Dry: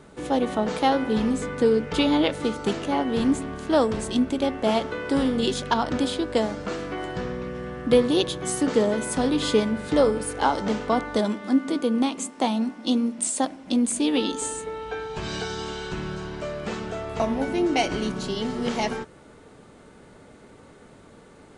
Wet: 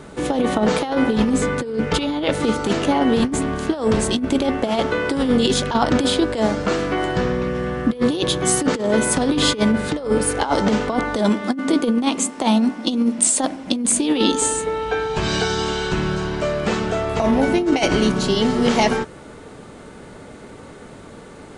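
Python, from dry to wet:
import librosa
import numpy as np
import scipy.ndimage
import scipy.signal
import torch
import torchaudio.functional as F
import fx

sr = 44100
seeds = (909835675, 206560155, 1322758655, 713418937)

y = fx.over_compress(x, sr, threshold_db=-24.0, ratio=-0.5)
y = F.gain(torch.from_numpy(y), 7.5).numpy()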